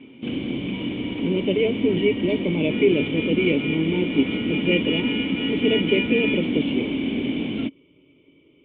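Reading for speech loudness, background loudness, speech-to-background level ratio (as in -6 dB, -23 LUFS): -24.0 LUFS, -25.5 LUFS, 1.5 dB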